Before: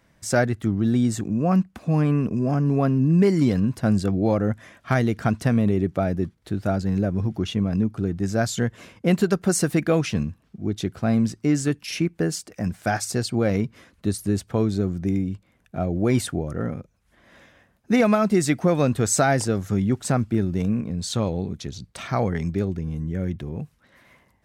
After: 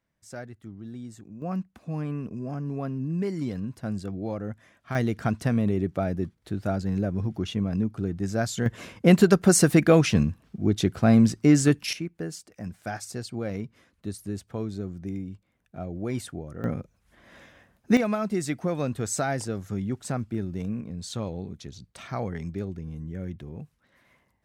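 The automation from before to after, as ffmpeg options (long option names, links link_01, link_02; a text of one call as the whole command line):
ffmpeg -i in.wav -af "asetnsamples=nb_out_samples=441:pad=0,asendcmd='1.42 volume volume -11dB;4.95 volume volume -4dB;8.66 volume volume 3dB;11.93 volume volume -10dB;16.64 volume volume 0.5dB;17.97 volume volume -8dB',volume=-19dB" out.wav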